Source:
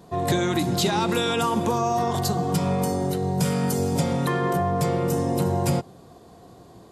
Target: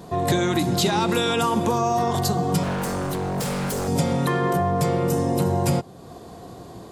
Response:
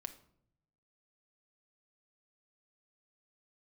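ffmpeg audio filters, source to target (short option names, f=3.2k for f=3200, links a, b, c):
-filter_complex "[0:a]asplit=2[a][b];[b]acompressor=threshold=-39dB:ratio=6,volume=3dB[c];[a][c]amix=inputs=2:normalize=0,asettb=1/sr,asplit=3[d][e][f];[d]atrim=end=2.634[g];[e]atrim=start=2.63:end=3.88,asetpts=PTS-STARTPTS,afade=t=in:d=0.004:c=qsin,afade=t=out:st=1.246:d=0.004:c=qsin,aeval=exprs='0.0891*(abs(mod(val(0)/0.0891+3,4)-2)-1)':c=same[h];[f]atrim=start=3.876[i];[g][h]acrossfade=d=0.004:c1=hsin:c2=qsin[j];[j][i]acrossfade=d=0.004:c1=qsin:c2=hsin"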